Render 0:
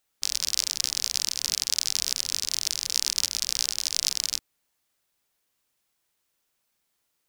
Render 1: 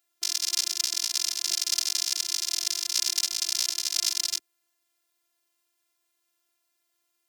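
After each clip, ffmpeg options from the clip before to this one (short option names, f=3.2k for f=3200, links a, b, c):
-af "afftfilt=real='hypot(re,im)*cos(PI*b)':imag='0':win_size=512:overlap=0.75,highpass=190,volume=3dB"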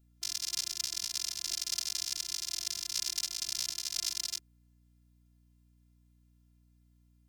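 -af "aeval=exprs='val(0)+0.00158*(sin(2*PI*60*n/s)+sin(2*PI*2*60*n/s)/2+sin(2*PI*3*60*n/s)/3+sin(2*PI*4*60*n/s)/4+sin(2*PI*5*60*n/s)/5)':c=same,volume=-8dB"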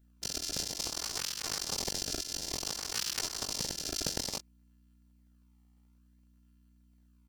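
-filter_complex "[0:a]asplit=2[a][b];[b]adelay=21,volume=-4.5dB[c];[a][c]amix=inputs=2:normalize=0,asplit=2[d][e];[e]acrusher=samples=24:mix=1:aa=0.000001:lfo=1:lforange=38.4:lforate=0.57,volume=-6dB[f];[d][f]amix=inputs=2:normalize=0,volume=-2.5dB"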